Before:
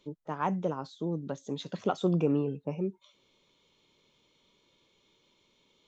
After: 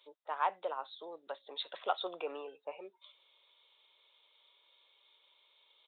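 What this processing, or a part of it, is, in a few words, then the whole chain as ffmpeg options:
musical greeting card: -af "aresample=8000,aresample=44100,highpass=f=600:w=0.5412,highpass=f=600:w=1.3066,equalizer=f=3.9k:t=o:w=0.31:g=10.5"

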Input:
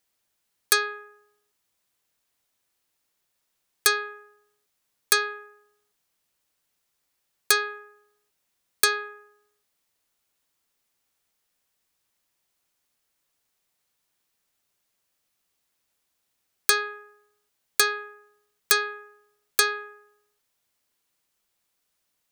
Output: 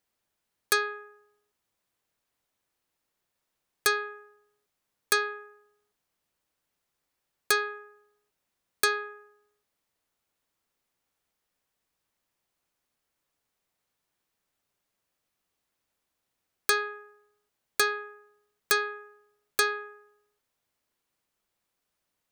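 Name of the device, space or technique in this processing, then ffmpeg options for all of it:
behind a face mask: -af "highshelf=f=2.3k:g=-7.5"

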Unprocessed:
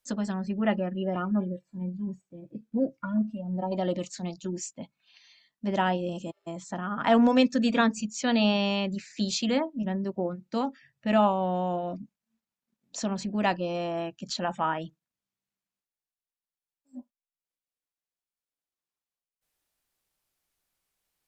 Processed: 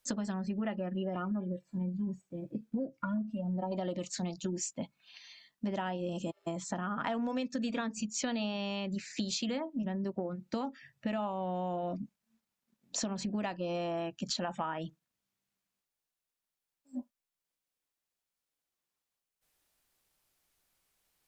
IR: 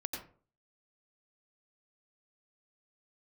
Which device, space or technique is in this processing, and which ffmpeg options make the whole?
serial compression, leveller first: -af "acompressor=threshold=-27dB:ratio=2,acompressor=threshold=-36dB:ratio=6,volume=4dB"

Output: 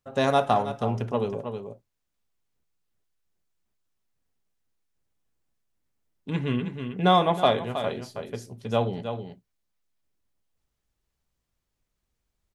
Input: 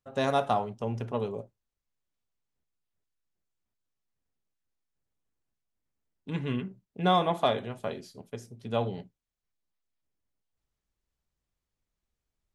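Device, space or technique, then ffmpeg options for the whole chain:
ducked delay: -filter_complex "[0:a]asplit=3[a][b][c];[b]adelay=319,volume=-7dB[d];[c]apad=whole_len=567341[e];[d][e]sidechaincompress=threshold=-29dB:ratio=8:attack=27:release=571[f];[a][f]amix=inputs=2:normalize=0,volume=4.5dB"

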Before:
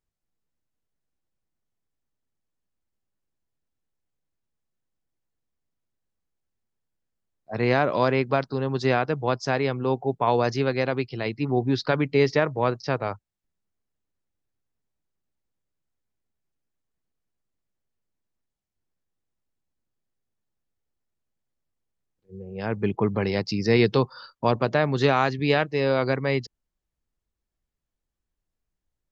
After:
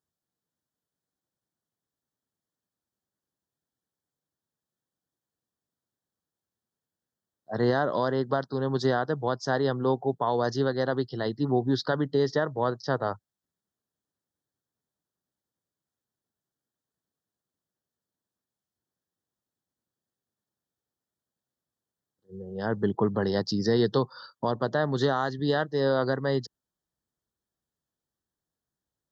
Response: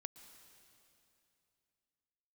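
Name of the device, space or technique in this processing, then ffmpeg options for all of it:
PA system with an anti-feedback notch: -af "highpass=110,asuperstop=centerf=2400:order=8:qfactor=2.1,alimiter=limit=-14dB:level=0:latency=1:release=419"

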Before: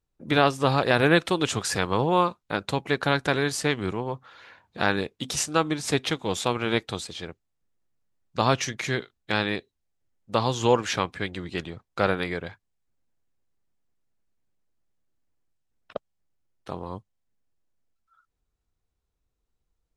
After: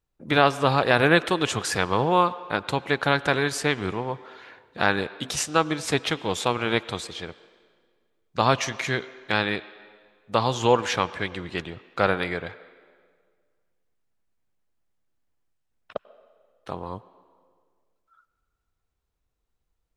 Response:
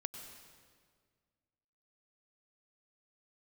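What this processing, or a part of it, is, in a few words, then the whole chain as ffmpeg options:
filtered reverb send: -filter_complex "[0:a]asplit=2[a][b];[b]highpass=440,lowpass=4k[c];[1:a]atrim=start_sample=2205[d];[c][d]afir=irnorm=-1:irlink=0,volume=-6dB[e];[a][e]amix=inputs=2:normalize=0"

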